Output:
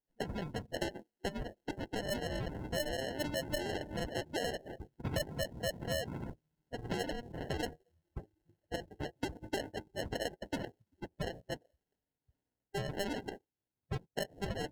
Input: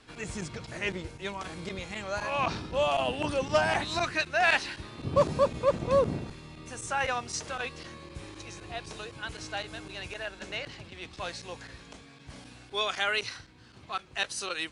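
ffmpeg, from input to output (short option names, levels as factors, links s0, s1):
-filter_complex "[0:a]asplit=3[s0][s1][s2];[s0]afade=t=out:st=0.76:d=0.02[s3];[s1]highpass=420,afade=t=in:st=0.76:d=0.02,afade=t=out:st=1.97:d=0.02[s4];[s2]afade=t=in:st=1.97:d=0.02[s5];[s3][s4][s5]amix=inputs=3:normalize=0,agate=range=0.0708:threshold=0.0112:ratio=16:detection=peak,highshelf=f=3000:t=q:w=3:g=-14,acompressor=threshold=0.0141:ratio=16,acrusher=samples=37:mix=1:aa=0.000001,afftdn=nr=22:nf=-51,adynamicequalizer=threshold=0.00126:dfrequency=2300:dqfactor=0.7:tfrequency=2300:tqfactor=0.7:attack=5:release=100:ratio=0.375:range=3:mode=boostabove:tftype=highshelf,volume=1.5"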